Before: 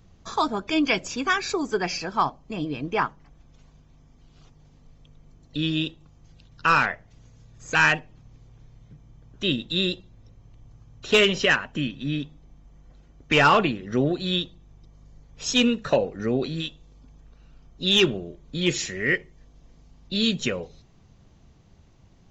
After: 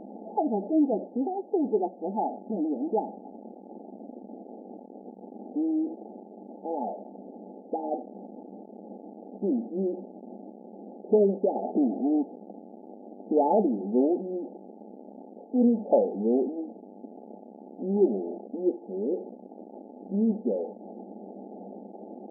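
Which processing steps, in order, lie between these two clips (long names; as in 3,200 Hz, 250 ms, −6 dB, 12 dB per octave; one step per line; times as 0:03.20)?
converter with a step at zero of −29 dBFS
0:11.54–0:12.21: hollow resonant body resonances 410/680 Hz, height 11 dB → 9 dB, ringing for 20 ms
brick-wall band-pass 190–880 Hz
level −1 dB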